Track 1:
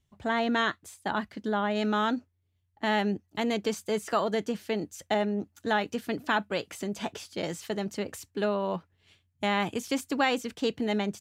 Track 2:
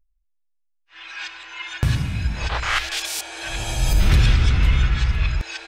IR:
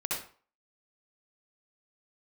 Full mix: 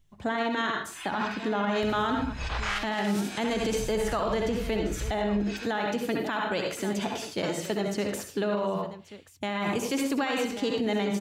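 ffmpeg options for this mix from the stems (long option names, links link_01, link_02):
-filter_complex "[0:a]volume=-0.5dB,asplit=4[link_01][link_02][link_03][link_04];[link_02]volume=-3.5dB[link_05];[link_03]volume=-13dB[link_06];[1:a]acompressor=threshold=-28dB:ratio=6,volume=-1dB,asplit=2[link_07][link_08];[link_08]volume=-13dB[link_09];[link_04]apad=whole_len=250091[link_10];[link_07][link_10]sidechaincompress=threshold=-40dB:ratio=8:attack=16:release=365[link_11];[2:a]atrim=start_sample=2205[link_12];[link_05][link_09]amix=inputs=2:normalize=0[link_13];[link_13][link_12]afir=irnorm=-1:irlink=0[link_14];[link_06]aecho=0:1:1134:1[link_15];[link_01][link_11][link_14][link_15]amix=inputs=4:normalize=0,alimiter=limit=-19.5dB:level=0:latency=1:release=50"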